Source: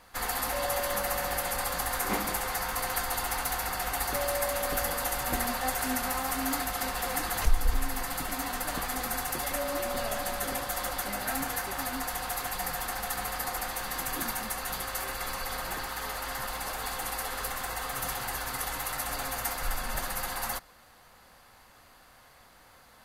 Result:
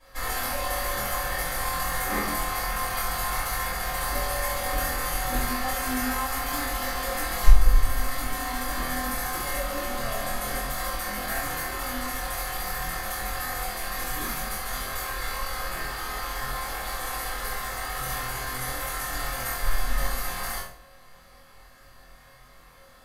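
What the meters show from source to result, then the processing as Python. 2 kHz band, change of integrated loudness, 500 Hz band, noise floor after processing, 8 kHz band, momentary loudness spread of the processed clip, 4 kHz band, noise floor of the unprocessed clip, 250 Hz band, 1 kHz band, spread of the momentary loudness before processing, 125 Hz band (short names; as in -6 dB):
+3.5 dB, +2.5 dB, +0.5 dB, -52 dBFS, +1.0 dB, 4 LU, +2.0 dB, -57 dBFS, +2.0 dB, +2.5 dB, 4 LU, +7.0 dB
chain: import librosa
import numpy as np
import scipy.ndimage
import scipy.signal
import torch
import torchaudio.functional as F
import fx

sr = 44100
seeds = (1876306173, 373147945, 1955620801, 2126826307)

y = fx.room_flutter(x, sr, wall_m=4.1, rt60_s=0.37)
y = fx.room_shoebox(y, sr, seeds[0], volume_m3=34.0, walls='mixed', distance_m=2.2)
y = y * librosa.db_to_amplitude(-12.0)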